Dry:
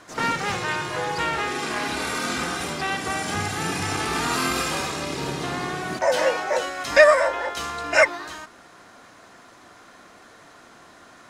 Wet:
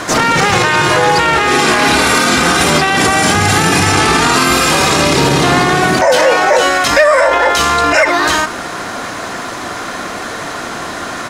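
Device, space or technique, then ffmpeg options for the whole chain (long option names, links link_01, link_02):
loud club master: -filter_complex "[0:a]asettb=1/sr,asplit=3[link_01][link_02][link_03];[link_01]atrim=end=3.934[link_04];[link_02]atrim=start=3.93:end=4.44,asetpts=PTS-STARTPTS,afade=type=in:duration=0.004:curve=qsin,afade=type=out:start_time=0.506:duration=0.004:curve=qsin,lowpass=11000[link_05];[link_03]atrim=start=4.436[link_06];[link_04][link_05]acrossfade=duration=0.004:curve1=hsin:curve2=qsin[link_07];[link_07][link_06]acrossfade=duration=0.004:curve1=qsin:curve2=hsin,aecho=1:1:71:0.0944,acompressor=threshold=-26dB:ratio=2,asoftclip=type=hard:threshold=-15dB,alimiter=level_in=27dB:limit=-1dB:release=50:level=0:latency=1,volume=-1dB"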